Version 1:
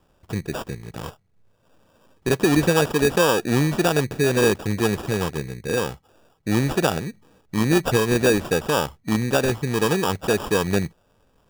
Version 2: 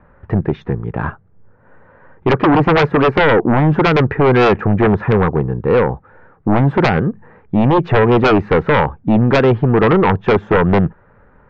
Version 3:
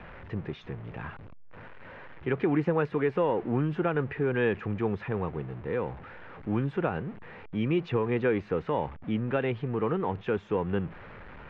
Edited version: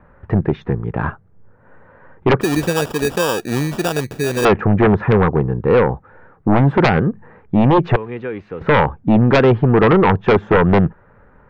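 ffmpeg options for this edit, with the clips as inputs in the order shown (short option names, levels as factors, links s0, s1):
-filter_complex "[1:a]asplit=3[s0][s1][s2];[s0]atrim=end=2.412[s3];[0:a]atrim=start=2.408:end=4.452[s4];[s1]atrim=start=4.448:end=7.962[s5];[2:a]atrim=start=7.958:end=8.612[s6];[s2]atrim=start=8.608[s7];[s3][s4]acrossfade=d=0.004:c1=hsin:c2=hsin[s8];[s8][s5]acrossfade=d=0.004:c1=hsin:c2=hsin[s9];[s9][s6]acrossfade=d=0.004:c1=hsin:c2=hsin[s10];[s10][s7]acrossfade=d=0.004:c1=hsin:c2=hsin"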